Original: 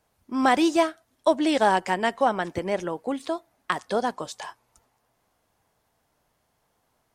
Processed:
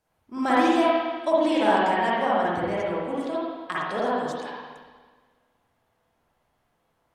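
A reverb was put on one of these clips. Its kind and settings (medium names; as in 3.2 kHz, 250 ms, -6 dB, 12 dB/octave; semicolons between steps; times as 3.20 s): spring tank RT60 1.5 s, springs 46/52/60 ms, chirp 35 ms, DRR -7.5 dB; trim -7.5 dB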